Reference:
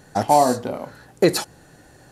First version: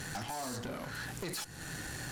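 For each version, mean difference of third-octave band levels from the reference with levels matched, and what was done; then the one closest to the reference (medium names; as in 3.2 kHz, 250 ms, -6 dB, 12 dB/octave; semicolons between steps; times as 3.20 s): 17.0 dB: FFT filter 150 Hz 0 dB, 600 Hz -8 dB, 1.7 kHz +4 dB; peak limiter -19.5 dBFS, peak gain reduction 12.5 dB; compression 12:1, threshold -41 dBFS, peak gain reduction 16 dB; valve stage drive 46 dB, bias 0.5; trim +11 dB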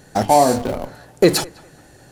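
2.0 dB: peaking EQ 1.1 kHz -4 dB 1.3 oct; hum notches 50/100/150/200/250/300 Hz; in parallel at -11 dB: Schmitt trigger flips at -27 dBFS; on the sum: band-passed feedback delay 203 ms, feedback 41%, band-pass 1.1 kHz, level -20.5 dB; trim +3.5 dB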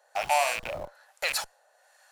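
8.5 dB: rattle on loud lows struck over -32 dBFS, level -13 dBFS; elliptic high-pass 580 Hz, stop band 50 dB; in parallel at -11 dB: Schmitt trigger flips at -34.5 dBFS; on the sum: harmonic tremolo 1.2 Hz, depth 70%, crossover 860 Hz; trim -4.5 dB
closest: second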